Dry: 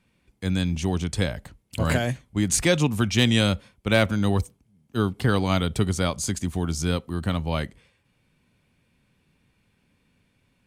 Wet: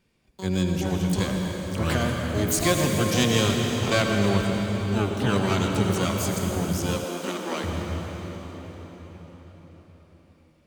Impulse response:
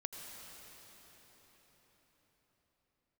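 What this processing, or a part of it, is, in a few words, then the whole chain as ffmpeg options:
shimmer-style reverb: -filter_complex "[0:a]asplit=2[s0][s1];[s1]asetrate=88200,aresample=44100,atempo=0.5,volume=0.562[s2];[s0][s2]amix=inputs=2:normalize=0[s3];[1:a]atrim=start_sample=2205[s4];[s3][s4]afir=irnorm=-1:irlink=0,asettb=1/sr,asplit=3[s5][s6][s7];[s5]atrim=end=7.044[s8];[s6]atrim=start=7.04:end=7.64,asetpts=PTS-STARTPTS,afade=t=in:d=0.004:c=qsin,afade=t=out:st=0.596:d=0.004:c=qsin,highpass=f=230:w=0.5412,highpass=f=230:w=1.3066[s9];[s7]atrim=start=7.636[s10];[s8][s9]acrossfade=d=0.004:c1=hsin:c2=qsin[s11];[s11][s10]acrossfade=d=0.004:c1=qsin:c2=hsin"

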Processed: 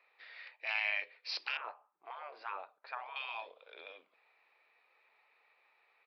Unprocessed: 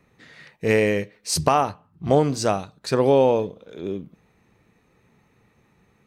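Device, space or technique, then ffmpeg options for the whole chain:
musical greeting card: -filter_complex "[0:a]asettb=1/sr,asplit=3[s0][s1][s2];[s0]atrim=end=1.574[s3];[s1]atrim=start=1.57:end=3.16,asetpts=PTS-STARTPTS,afade=t=in:d=0.004:c=qsin,afade=t=out:st=1.586:d=0.004:c=qsin,lowpass=1300[s4];[s2]atrim=start=3.156[s5];[s3][s4]acrossfade=d=0.004:c1=hsin:c2=qsin[s6];[s6][s5]acrossfade=d=0.004:c1=qsin:c2=hsin,afftfilt=real='re*lt(hypot(re,im),0.158)':imag='im*lt(hypot(re,im),0.158)':win_size=1024:overlap=0.75,aresample=11025,aresample=44100,highpass=f=620:w=0.5412,highpass=f=620:w=1.3066,equalizer=f=2400:t=o:w=0.27:g=8,volume=0.501"

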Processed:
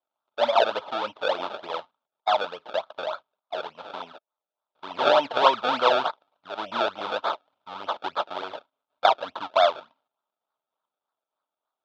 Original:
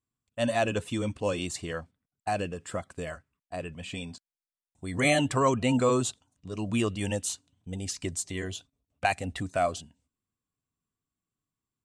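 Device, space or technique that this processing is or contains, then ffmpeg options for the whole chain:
circuit-bent sampling toy: -af "acrusher=samples=30:mix=1:aa=0.000001:lfo=1:lforange=30:lforate=3.4,highpass=580,equalizer=f=620:t=q:w=4:g=9,equalizer=f=910:t=q:w=4:g=9,equalizer=f=1300:t=q:w=4:g=10,equalizer=f=1900:t=q:w=4:g=-9,equalizer=f=3500:t=q:w=4:g=9,lowpass=f=4200:w=0.5412,lowpass=f=4200:w=1.3066,volume=1.33"

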